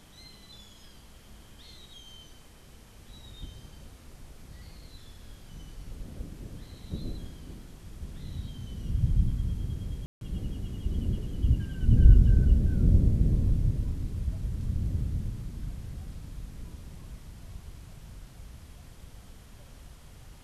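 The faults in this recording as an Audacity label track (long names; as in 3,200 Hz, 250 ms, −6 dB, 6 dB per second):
10.060000	10.210000	drop-out 152 ms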